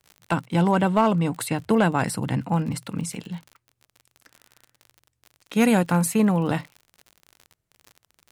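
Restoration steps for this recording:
clipped peaks rebuilt −9 dBFS
click removal

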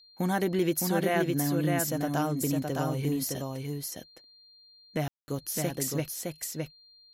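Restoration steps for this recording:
notch filter 4,200 Hz, Q 30
ambience match 0:05.08–0:05.28
echo removal 612 ms −3.5 dB

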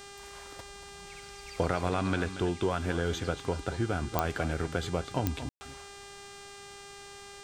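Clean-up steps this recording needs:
click removal
hum removal 400.7 Hz, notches 23
ambience match 0:05.49–0:05.61
echo removal 232 ms −12.5 dB

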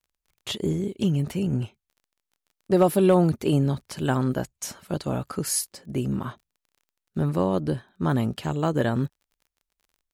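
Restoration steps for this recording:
clipped peaks rebuilt −10 dBFS
click removal

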